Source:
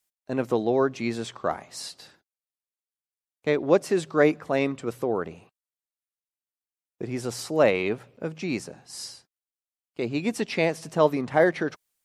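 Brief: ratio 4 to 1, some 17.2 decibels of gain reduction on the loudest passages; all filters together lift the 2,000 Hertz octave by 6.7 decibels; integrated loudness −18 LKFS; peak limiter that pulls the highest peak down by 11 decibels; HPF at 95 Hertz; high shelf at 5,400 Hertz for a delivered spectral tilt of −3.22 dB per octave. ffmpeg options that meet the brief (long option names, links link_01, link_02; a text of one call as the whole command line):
ffmpeg -i in.wav -af "highpass=95,equalizer=frequency=2000:width_type=o:gain=7,highshelf=frequency=5400:gain=8.5,acompressor=threshold=-34dB:ratio=4,volume=22dB,alimiter=limit=-6.5dB:level=0:latency=1" out.wav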